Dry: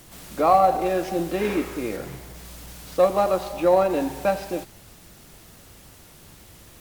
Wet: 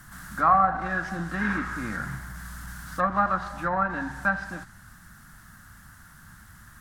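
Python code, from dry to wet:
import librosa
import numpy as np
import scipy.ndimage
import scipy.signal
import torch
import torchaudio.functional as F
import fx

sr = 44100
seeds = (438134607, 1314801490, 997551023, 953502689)

y = fx.env_lowpass_down(x, sr, base_hz=2100.0, full_db=-14.0)
y = fx.curve_eq(y, sr, hz=(220.0, 430.0, 1600.0, 2400.0, 9200.0), db=(0, -23, 12, -12, -4))
y = fx.rider(y, sr, range_db=4, speed_s=2.0)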